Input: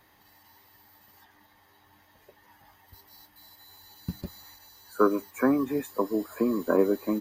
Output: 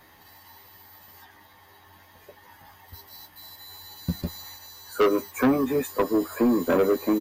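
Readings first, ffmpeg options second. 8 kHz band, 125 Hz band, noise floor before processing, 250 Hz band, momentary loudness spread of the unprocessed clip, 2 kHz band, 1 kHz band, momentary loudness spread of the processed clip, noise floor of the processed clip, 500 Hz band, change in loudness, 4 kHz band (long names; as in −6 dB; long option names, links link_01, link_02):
+7.5 dB, +5.5 dB, −62 dBFS, +3.0 dB, 16 LU, +4.5 dB, +3.0 dB, 21 LU, −54 dBFS, +3.0 dB, +2.5 dB, +9.5 dB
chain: -filter_complex "[0:a]asplit=2[link_01][link_02];[link_02]adelay=12,volume=-5.5dB[link_03];[link_01][link_03]amix=inputs=2:normalize=0,asoftclip=type=tanh:threshold=-21dB,volume=6dB"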